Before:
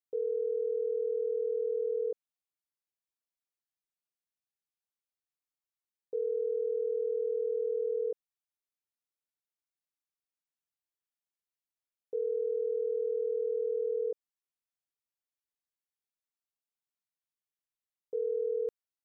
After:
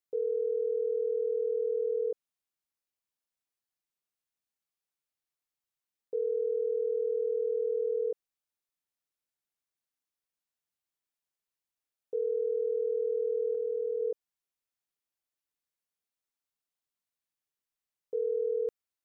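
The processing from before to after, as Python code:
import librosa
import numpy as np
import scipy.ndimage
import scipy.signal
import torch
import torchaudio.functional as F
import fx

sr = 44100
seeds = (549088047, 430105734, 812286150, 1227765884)

y = fx.dynamic_eq(x, sr, hz=420.0, q=4.4, threshold_db=-46.0, ratio=4.0, max_db=-3, at=(13.54, 14.01))
y = y * librosa.db_to_amplitude(1.5)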